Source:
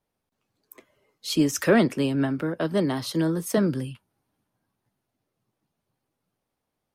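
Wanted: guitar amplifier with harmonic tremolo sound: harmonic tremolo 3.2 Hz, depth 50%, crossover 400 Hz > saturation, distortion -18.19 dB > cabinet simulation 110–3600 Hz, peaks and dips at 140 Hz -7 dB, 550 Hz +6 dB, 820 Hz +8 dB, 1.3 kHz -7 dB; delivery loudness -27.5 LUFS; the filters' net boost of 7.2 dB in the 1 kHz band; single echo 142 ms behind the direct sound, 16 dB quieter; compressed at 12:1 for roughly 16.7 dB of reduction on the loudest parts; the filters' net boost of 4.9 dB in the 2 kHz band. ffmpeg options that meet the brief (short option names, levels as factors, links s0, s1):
-filter_complex "[0:a]equalizer=f=1000:t=o:g=4,equalizer=f=2000:t=o:g=6,acompressor=threshold=0.0355:ratio=12,aecho=1:1:142:0.158,acrossover=split=400[s0][s1];[s0]aeval=exprs='val(0)*(1-0.5/2+0.5/2*cos(2*PI*3.2*n/s))':c=same[s2];[s1]aeval=exprs='val(0)*(1-0.5/2-0.5/2*cos(2*PI*3.2*n/s))':c=same[s3];[s2][s3]amix=inputs=2:normalize=0,asoftclip=threshold=0.0398,highpass=110,equalizer=f=140:t=q:w=4:g=-7,equalizer=f=550:t=q:w=4:g=6,equalizer=f=820:t=q:w=4:g=8,equalizer=f=1300:t=q:w=4:g=-7,lowpass=f=3600:w=0.5412,lowpass=f=3600:w=1.3066,volume=2.99"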